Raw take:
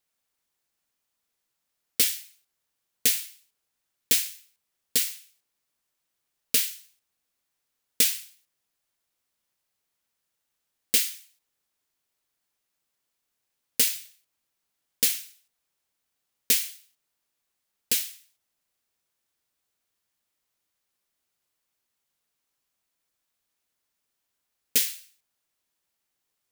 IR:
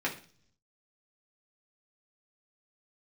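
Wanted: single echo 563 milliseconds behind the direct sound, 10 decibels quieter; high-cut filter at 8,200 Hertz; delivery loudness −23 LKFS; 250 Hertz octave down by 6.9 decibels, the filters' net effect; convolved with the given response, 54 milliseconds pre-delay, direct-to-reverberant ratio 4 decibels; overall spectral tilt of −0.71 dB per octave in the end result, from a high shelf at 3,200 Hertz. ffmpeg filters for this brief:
-filter_complex "[0:a]lowpass=8200,equalizer=frequency=250:width_type=o:gain=-7.5,highshelf=frequency=3200:gain=-6,aecho=1:1:563:0.316,asplit=2[link_01][link_02];[1:a]atrim=start_sample=2205,adelay=54[link_03];[link_02][link_03]afir=irnorm=-1:irlink=0,volume=-11.5dB[link_04];[link_01][link_04]amix=inputs=2:normalize=0,volume=12.5dB"

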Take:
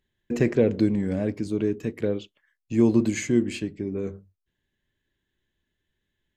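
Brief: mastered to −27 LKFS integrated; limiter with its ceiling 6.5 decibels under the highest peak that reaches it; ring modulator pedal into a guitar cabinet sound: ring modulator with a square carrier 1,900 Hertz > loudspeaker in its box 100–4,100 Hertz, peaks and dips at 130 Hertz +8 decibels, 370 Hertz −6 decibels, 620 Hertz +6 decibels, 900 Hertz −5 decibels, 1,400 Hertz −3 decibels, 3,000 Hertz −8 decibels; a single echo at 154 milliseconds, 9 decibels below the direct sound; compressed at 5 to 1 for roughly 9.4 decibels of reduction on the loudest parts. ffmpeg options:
ffmpeg -i in.wav -af "acompressor=threshold=-25dB:ratio=5,alimiter=limit=-21.5dB:level=0:latency=1,aecho=1:1:154:0.355,aeval=exprs='val(0)*sgn(sin(2*PI*1900*n/s))':channel_layout=same,highpass=100,equalizer=frequency=130:width_type=q:width=4:gain=8,equalizer=frequency=370:width_type=q:width=4:gain=-6,equalizer=frequency=620:width_type=q:width=4:gain=6,equalizer=frequency=900:width_type=q:width=4:gain=-5,equalizer=frequency=1400:width_type=q:width=4:gain=-3,equalizer=frequency=3000:width_type=q:width=4:gain=-8,lowpass=frequency=4100:width=0.5412,lowpass=frequency=4100:width=1.3066,volume=5dB" out.wav

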